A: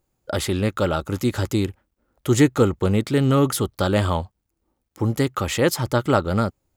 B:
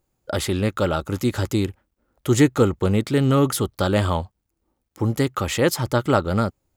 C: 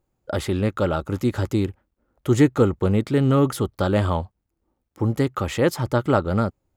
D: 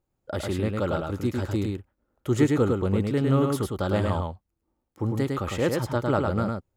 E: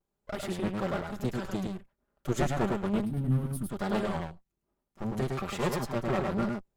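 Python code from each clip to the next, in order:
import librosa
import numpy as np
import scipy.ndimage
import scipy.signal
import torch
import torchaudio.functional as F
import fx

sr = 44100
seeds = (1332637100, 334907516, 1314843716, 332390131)

y1 = x
y2 = fx.high_shelf(y1, sr, hz=2600.0, db=-8.5)
y3 = y2 + 10.0 ** (-3.5 / 20.0) * np.pad(y2, (int(105 * sr / 1000.0), 0))[:len(y2)]
y3 = F.gain(torch.from_numpy(y3), -5.5).numpy()
y4 = fx.lower_of_two(y3, sr, delay_ms=5.1)
y4 = fx.vibrato(y4, sr, rate_hz=1.1, depth_cents=71.0)
y4 = fx.spec_box(y4, sr, start_s=3.05, length_s=0.65, low_hz=330.0, high_hz=8400.0, gain_db=-15)
y4 = F.gain(torch.from_numpy(y4), -3.0).numpy()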